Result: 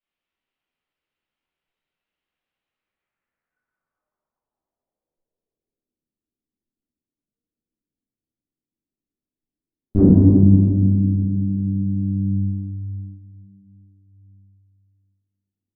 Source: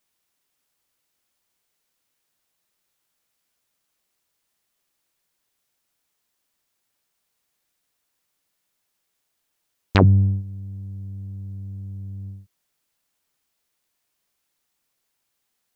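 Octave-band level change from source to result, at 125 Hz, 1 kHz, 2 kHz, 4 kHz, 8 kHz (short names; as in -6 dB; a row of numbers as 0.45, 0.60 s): +5.0 dB, under -10 dB, under -25 dB, under -40 dB, n/a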